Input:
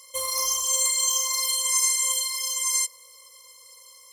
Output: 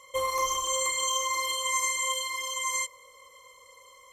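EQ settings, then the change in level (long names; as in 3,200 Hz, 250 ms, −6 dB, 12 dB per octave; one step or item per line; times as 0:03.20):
moving average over 9 samples
+6.5 dB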